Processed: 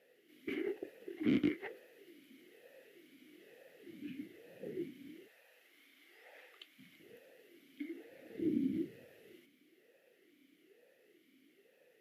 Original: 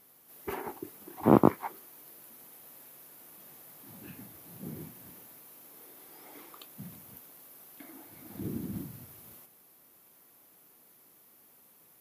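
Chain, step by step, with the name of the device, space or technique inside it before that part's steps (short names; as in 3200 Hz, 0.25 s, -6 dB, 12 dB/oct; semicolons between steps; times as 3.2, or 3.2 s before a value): talk box (tube stage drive 29 dB, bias 0.55; vowel sweep e-i 1.1 Hz); 5.28–7 resonant low shelf 560 Hz -13.5 dB, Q 1.5; gain +13.5 dB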